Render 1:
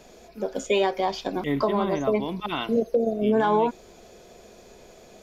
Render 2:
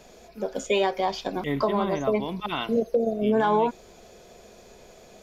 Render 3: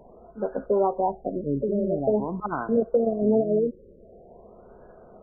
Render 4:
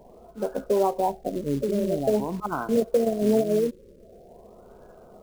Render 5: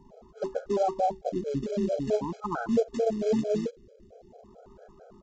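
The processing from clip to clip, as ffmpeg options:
-af "equalizer=f=310:w=2.4:g=-3.5"
-af "afftfilt=real='re*lt(b*sr/1024,590*pow(1700/590,0.5+0.5*sin(2*PI*0.46*pts/sr)))':imag='im*lt(b*sr/1024,590*pow(1700/590,0.5+0.5*sin(2*PI*0.46*pts/sr)))':win_size=1024:overlap=0.75,volume=1.5dB"
-af "acrusher=bits=5:mode=log:mix=0:aa=0.000001"
-af "aresample=16000,aresample=44100,afftfilt=real='re*gt(sin(2*PI*4.5*pts/sr)*(1-2*mod(floor(b*sr/1024/430),2)),0)':imag='im*gt(sin(2*PI*4.5*pts/sr)*(1-2*mod(floor(b*sr/1024/430),2)),0)':win_size=1024:overlap=0.75"

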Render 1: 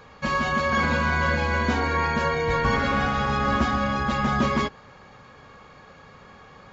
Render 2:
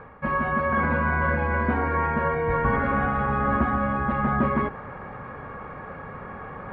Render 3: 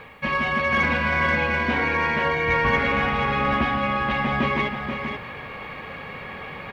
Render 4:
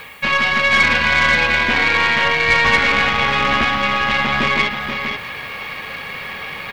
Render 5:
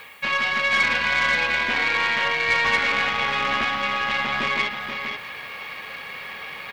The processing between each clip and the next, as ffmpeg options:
-af "lowpass=f=1.9k:w=0.5412,lowpass=f=1.9k:w=1.3066,areverse,acompressor=mode=upward:threshold=-26dB:ratio=2.5,areverse"
-af "aexciter=amount=5.5:drive=9.3:freq=2.2k,lowshelf=f=120:g=-4,aecho=1:1:482:0.447"
-filter_complex "[0:a]aeval=exprs='0.376*(cos(1*acos(clip(val(0)/0.376,-1,1)))-cos(1*PI/2))+0.0422*(cos(6*acos(clip(val(0)/0.376,-1,1)))-cos(6*PI/2))':c=same,acrossover=split=4000[a][b];[b]acompressor=threshold=-54dB:ratio=4:attack=1:release=60[c];[a][c]amix=inputs=2:normalize=0,crystalizer=i=8.5:c=0"
-af "lowshelf=f=230:g=-9,volume=-6dB"

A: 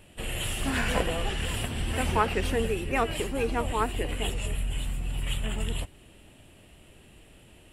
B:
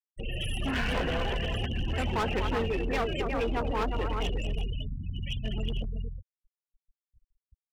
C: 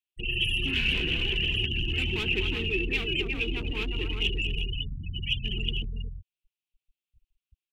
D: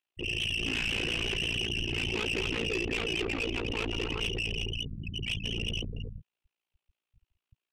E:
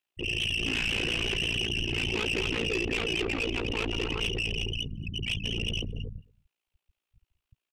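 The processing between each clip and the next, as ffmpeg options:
-af "aecho=1:1:242|360:0.316|0.422,afftfilt=real='re*gte(hypot(re,im),0.0355)':imag='im*gte(hypot(re,im),0.0355)':win_size=1024:overlap=0.75,asoftclip=type=hard:threshold=-25dB"
-af "firequalizer=gain_entry='entry(160,0);entry(250,-5);entry(360,5);entry(540,-20);entry(1800,-7);entry(2600,13);entry(4800,-3)':delay=0.05:min_phase=1"
-filter_complex "[0:a]tremolo=f=57:d=1,asplit=2[a][b];[b]highpass=f=720:p=1,volume=18dB,asoftclip=type=tanh:threshold=-14.5dB[c];[a][c]amix=inputs=2:normalize=0,lowpass=f=1k:p=1,volume=-6dB,asoftclip=type=tanh:threshold=-31dB,volume=5dB"
-filter_complex "[0:a]asplit=2[a][b];[b]adelay=221.6,volume=-26dB,highshelf=f=4k:g=-4.99[c];[a][c]amix=inputs=2:normalize=0,volume=2dB"

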